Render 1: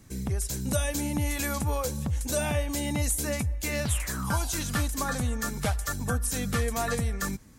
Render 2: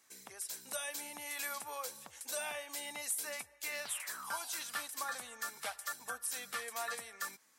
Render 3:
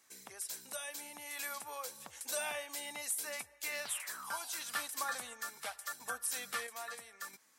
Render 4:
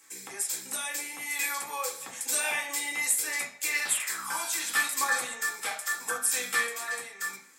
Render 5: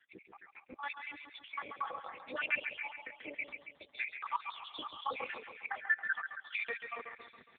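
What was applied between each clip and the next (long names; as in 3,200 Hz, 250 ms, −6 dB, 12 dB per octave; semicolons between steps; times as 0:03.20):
high-pass filter 850 Hz 12 dB per octave; dynamic equaliser 6,700 Hz, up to −6 dB, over −50 dBFS, Q 4.5; level −6.5 dB
sample-and-hold tremolo 1.5 Hz; level +2 dB
convolution reverb RT60 0.50 s, pre-delay 3 ms, DRR −2 dB; level +8 dB
time-frequency cells dropped at random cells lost 83%; repeating echo 137 ms, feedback 58%, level −8 dB; level +3.5 dB; AMR narrowband 5.9 kbit/s 8,000 Hz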